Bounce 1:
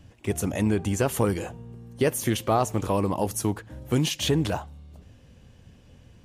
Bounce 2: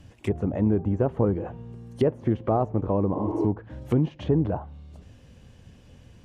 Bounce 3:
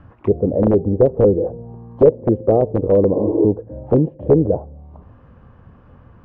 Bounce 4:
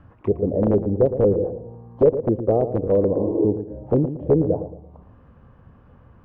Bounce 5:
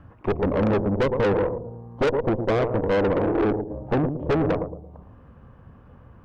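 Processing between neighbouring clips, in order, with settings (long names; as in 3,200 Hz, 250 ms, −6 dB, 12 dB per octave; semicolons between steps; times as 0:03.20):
treble cut that deepens with the level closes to 740 Hz, closed at −23.5 dBFS; healed spectral selection 0:03.18–0:03.43, 270–3,900 Hz; level +1.5 dB
wrap-around overflow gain 13 dB; envelope-controlled low-pass 500–1,400 Hz down, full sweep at −29 dBFS; level +4.5 dB
feedback echo with a low-pass in the loop 113 ms, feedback 36%, low-pass 1,100 Hz, level −10 dB; level −4.5 dB
tube saturation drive 24 dB, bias 0.75; level +6 dB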